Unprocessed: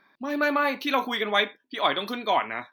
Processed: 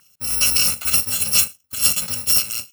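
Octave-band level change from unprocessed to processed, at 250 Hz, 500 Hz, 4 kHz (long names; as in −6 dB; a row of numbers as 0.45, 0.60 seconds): −9.0, −14.5, +8.0 decibels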